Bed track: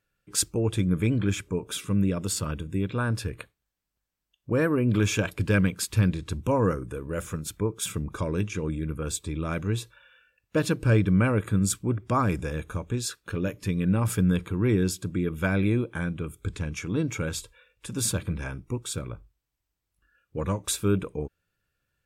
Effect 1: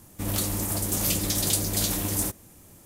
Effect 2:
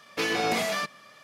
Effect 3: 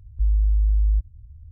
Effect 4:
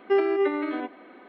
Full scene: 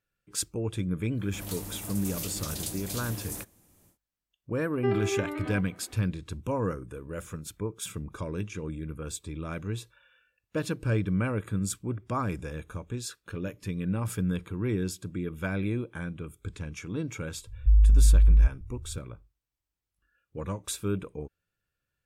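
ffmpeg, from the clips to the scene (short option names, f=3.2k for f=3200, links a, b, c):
-filter_complex "[0:a]volume=-6dB[a];[3:a]acontrast=30[b];[1:a]atrim=end=2.85,asetpts=PTS-STARTPTS,volume=-11dB,afade=t=in:d=0.1,afade=t=out:st=2.75:d=0.1,adelay=1130[c];[4:a]atrim=end=1.28,asetpts=PTS-STARTPTS,volume=-7dB,afade=t=in:d=0.004:c=hsin,afade=t=out:st=1.276:d=0.004:c=hsin,adelay=208593S[d];[b]atrim=end=1.51,asetpts=PTS-STARTPTS,volume=-3.5dB,afade=t=in:d=0.004:c=hsin,afade=t=out:st=1.506:d=0.004:c=hsin,adelay=17470[e];[a][c][d][e]amix=inputs=4:normalize=0"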